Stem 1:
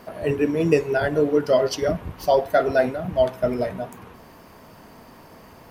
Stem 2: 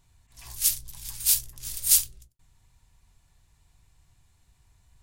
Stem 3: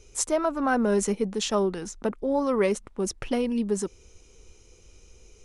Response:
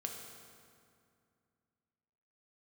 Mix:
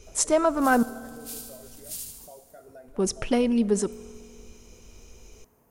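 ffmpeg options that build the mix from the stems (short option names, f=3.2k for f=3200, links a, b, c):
-filter_complex "[0:a]agate=range=-33dB:threshold=-42dB:ratio=3:detection=peak,acompressor=threshold=-36dB:ratio=2,aexciter=amount=5.6:drive=8.3:freq=6.4k,volume=-15dB,asplit=2[a][b];[b]volume=-14.5dB[c];[1:a]volume=-10.5dB,asplit=3[d][e][f];[e]volume=-6.5dB[g];[f]volume=-10.5dB[h];[2:a]volume=2dB,asplit=3[i][j][k];[i]atrim=end=0.83,asetpts=PTS-STARTPTS,afade=t=out:st=0.826:d=0.004:c=hsin[l];[j]atrim=start=0.83:end=2.88,asetpts=PTS-STARTPTS,volume=0[m];[k]atrim=start=2.88,asetpts=PTS-STARTPTS,afade=t=in:d=0.004:c=hsin[n];[l][m][n]concat=n=3:v=0:a=1,asplit=2[o][p];[p]volume=-13.5dB[q];[a][d]amix=inputs=2:normalize=0,lowpass=f=1.1k:p=1,alimiter=level_in=16.5dB:limit=-24dB:level=0:latency=1:release=278,volume=-16.5dB,volume=0dB[r];[3:a]atrim=start_sample=2205[s];[c][g][q]amix=inputs=3:normalize=0[t];[t][s]afir=irnorm=-1:irlink=0[u];[h]aecho=0:1:75|150|225|300|375|450|525:1|0.51|0.26|0.133|0.0677|0.0345|0.0176[v];[o][r][u][v]amix=inputs=4:normalize=0"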